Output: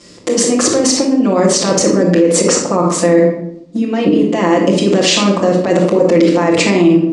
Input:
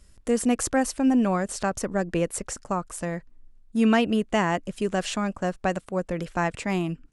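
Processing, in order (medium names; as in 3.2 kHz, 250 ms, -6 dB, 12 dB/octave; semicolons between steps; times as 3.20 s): compressor with a negative ratio -30 dBFS, ratio -1; cabinet simulation 270–7100 Hz, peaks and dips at 300 Hz +7 dB, 510 Hz +5 dB, 760 Hz -4 dB, 1.5 kHz -9 dB, 2.6 kHz -3 dB, 4.6 kHz +3 dB; reverberation RT60 0.70 s, pre-delay 6 ms, DRR -8 dB; loudness maximiser +12.5 dB; trim -1 dB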